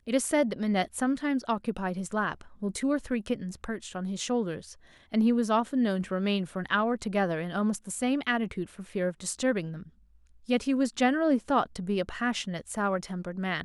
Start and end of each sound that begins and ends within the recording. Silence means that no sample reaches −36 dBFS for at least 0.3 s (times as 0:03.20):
0:05.14–0:09.82